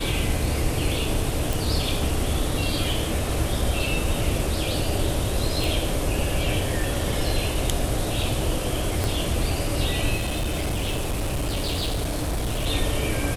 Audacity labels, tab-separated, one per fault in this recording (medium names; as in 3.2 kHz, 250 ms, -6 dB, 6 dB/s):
1.530000	1.530000	pop
5.640000	5.640000	pop
9.040000	9.040000	pop
10.150000	12.670000	clipped -22 dBFS